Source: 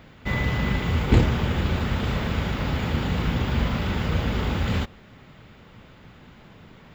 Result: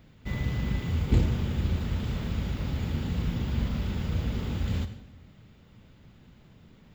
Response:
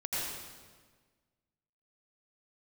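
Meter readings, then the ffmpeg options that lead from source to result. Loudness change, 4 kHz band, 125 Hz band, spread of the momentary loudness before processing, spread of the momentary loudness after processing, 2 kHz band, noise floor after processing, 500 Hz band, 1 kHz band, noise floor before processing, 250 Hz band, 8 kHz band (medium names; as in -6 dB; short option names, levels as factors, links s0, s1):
-5.5 dB, -9.5 dB, -4.0 dB, 6 LU, 6 LU, -12.5 dB, -56 dBFS, -10.0 dB, -13.0 dB, -50 dBFS, -6.0 dB, no reading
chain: -filter_complex "[0:a]equalizer=f=1200:w=0.33:g=-10,asplit=2[s0][s1];[1:a]atrim=start_sample=2205,asetrate=74970,aresample=44100[s2];[s1][s2]afir=irnorm=-1:irlink=0,volume=0.355[s3];[s0][s3]amix=inputs=2:normalize=0,volume=0.562"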